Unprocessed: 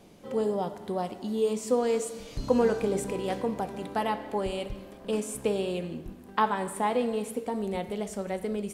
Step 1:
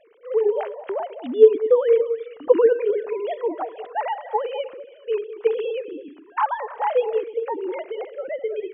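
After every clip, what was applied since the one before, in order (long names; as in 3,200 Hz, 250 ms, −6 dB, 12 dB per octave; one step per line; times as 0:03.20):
three sine waves on the formant tracks
echo through a band-pass that steps 102 ms, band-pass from 230 Hz, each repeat 1.4 octaves, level −8 dB
level +7 dB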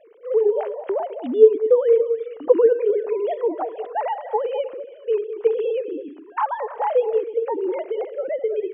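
parametric band 430 Hz +9 dB 2.4 octaves
in parallel at +1 dB: downward compressor, threshold −18 dBFS, peak gain reduction 19.5 dB
on the sum: level −10 dB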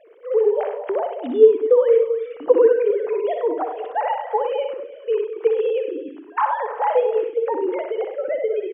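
parametric band 1,800 Hz +5 dB 2.3 octaves
loudspeakers that aren't time-aligned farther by 21 metres −7 dB, 34 metres −10 dB
level −1 dB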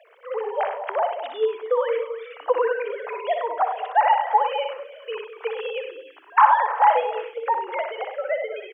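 inverse Chebyshev high-pass filter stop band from 160 Hz, stop band 70 dB
level +6.5 dB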